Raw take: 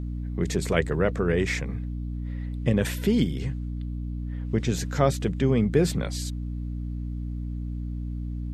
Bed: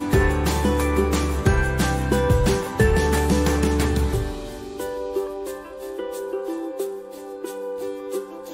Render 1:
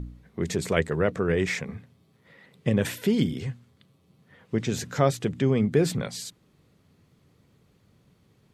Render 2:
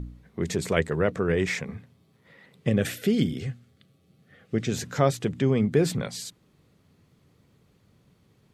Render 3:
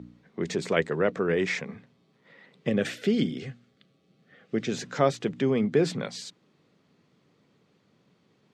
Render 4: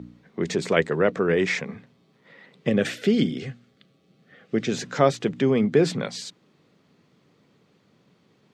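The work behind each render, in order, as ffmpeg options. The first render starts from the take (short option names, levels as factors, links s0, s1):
-af "bandreject=f=60:t=h:w=4,bandreject=f=120:t=h:w=4,bandreject=f=180:t=h:w=4,bandreject=f=240:t=h:w=4,bandreject=f=300:t=h:w=4"
-filter_complex "[0:a]asettb=1/sr,asplit=3[s0][s1][s2];[s0]atrim=end=2.684[s3];[s1]atrim=start=2.68:end=4.71,asetpts=PTS-STARTPTS,afade=t=in:d=0.004:c=qsin,afade=t=out:st=2.026:d=0.004:c=qsin,asuperstop=centerf=960:order=4:qfactor=3.5[s4];[s2]atrim=start=4.706[s5];[s3][s4]acrossfade=d=0.004:c1=hsin:c2=qsin[s6];[s6][s5]acrossfade=d=0.004:c1=qsin:c2=hsin"
-filter_complex "[0:a]acrossover=split=150 7100:gain=0.0631 1 0.0631[s0][s1][s2];[s0][s1][s2]amix=inputs=3:normalize=0"
-af "volume=1.58"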